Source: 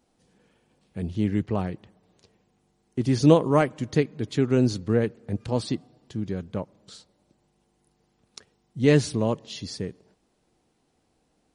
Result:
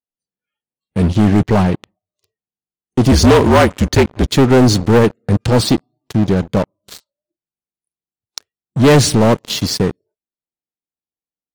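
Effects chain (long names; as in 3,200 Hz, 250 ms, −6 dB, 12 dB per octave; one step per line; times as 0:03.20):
0:03.11–0:04.28: frequency shifter −45 Hz
noise reduction from a noise print of the clip's start 24 dB
leveller curve on the samples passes 5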